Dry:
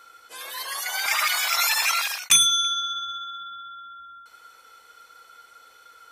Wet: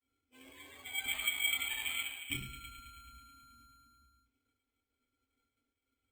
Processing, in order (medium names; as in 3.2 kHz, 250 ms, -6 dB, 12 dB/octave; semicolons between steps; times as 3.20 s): expander -39 dBFS; cascade formant filter i; resonant low shelf 120 Hz +13 dB, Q 1.5; feedback echo behind a high-pass 108 ms, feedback 72%, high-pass 2.2 kHz, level -10 dB; reverberation RT60 0.35 s, pre-delay 4 ms, DRR -4 dB; careless resampling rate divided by 8×, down filtered, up hold; trim +1.5 dB; Opus 48 kbps 48 kHz